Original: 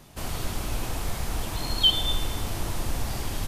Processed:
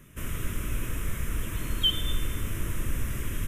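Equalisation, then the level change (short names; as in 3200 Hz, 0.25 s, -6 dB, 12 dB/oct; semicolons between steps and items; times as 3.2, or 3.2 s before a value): fixed phaser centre 1900 Hz, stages 4; 0.0 dB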